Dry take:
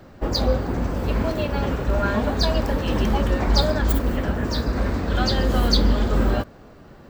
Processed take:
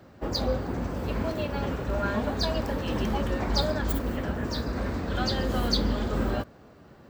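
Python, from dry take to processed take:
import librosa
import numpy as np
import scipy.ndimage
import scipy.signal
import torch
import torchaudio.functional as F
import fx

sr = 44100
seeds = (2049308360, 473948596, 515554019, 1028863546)

y = scipy.signal.sosfilt(scipy.signal.butter(2, 59.0, 'highpass', fs=sr, output='sos'), x)
y = F.gain(torch.from_numpy(y), -5.5).numpy()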